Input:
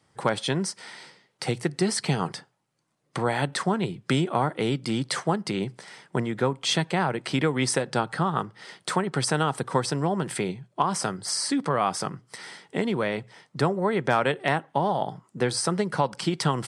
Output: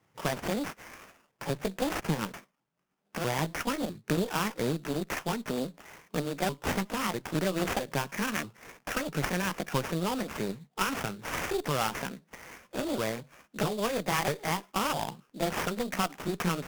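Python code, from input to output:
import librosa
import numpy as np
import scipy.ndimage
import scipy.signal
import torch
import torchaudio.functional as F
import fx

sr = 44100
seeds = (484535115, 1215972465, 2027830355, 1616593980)

y = fx.pitch_ramps(x, sr, semitones=7.0, every_ms=649)
y = fx.sample_hold(y, sr, seeds[0], rate_hz=4100.0, jitter_pct=20)
y = fx.tube_stage(y, sr, drive_db=20.0, bias=0.7)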